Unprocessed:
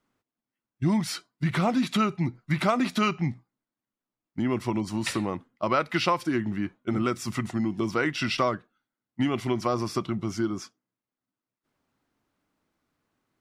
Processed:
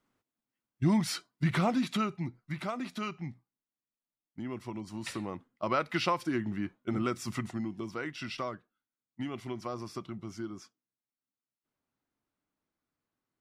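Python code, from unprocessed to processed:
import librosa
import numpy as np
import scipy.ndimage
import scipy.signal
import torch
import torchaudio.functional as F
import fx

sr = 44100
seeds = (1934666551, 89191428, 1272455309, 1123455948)

y = fx.gain(x, sr, db=fx.line((1.48, -2.0), (2.62, -12.0), (4.77, -12.0), (5.75, -5.0), (7.36, -5.0), (7.89, -11.5)))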